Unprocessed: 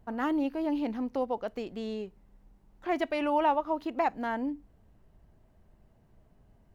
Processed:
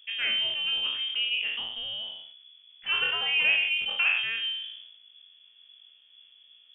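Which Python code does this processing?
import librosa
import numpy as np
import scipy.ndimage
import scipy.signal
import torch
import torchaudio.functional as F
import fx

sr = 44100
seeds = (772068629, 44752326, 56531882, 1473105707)

y = fx.spec_trails(x, sr, decay_s=0.59)
y = fx.freq_invert(y, sr, carrier_hz=3400)
y = fx.sustainer(y, sr, db_per_s=52.0)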